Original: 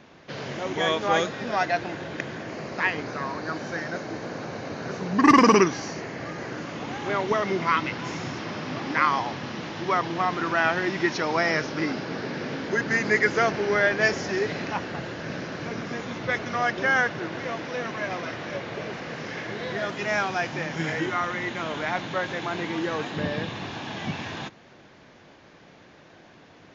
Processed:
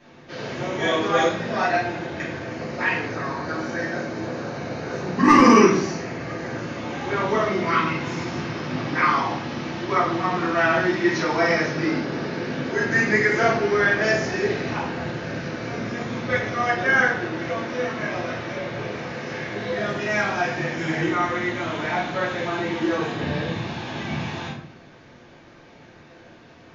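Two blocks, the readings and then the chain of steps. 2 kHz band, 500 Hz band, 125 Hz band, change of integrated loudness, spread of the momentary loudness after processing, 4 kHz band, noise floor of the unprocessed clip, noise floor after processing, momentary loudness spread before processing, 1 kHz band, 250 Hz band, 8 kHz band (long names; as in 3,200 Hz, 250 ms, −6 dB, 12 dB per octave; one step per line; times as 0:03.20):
+3.0 dB, +3.5 dB, +5.0 dB, +3.0 dB, 12 LU, +1.0 dB, −52 dBFS, −48 dBFS, 12 LU, +2.5 dB, +4.5 dB, can't be measured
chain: rectangular room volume 120 cubic metres, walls mixed, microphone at 2.8 metres
level −8 dB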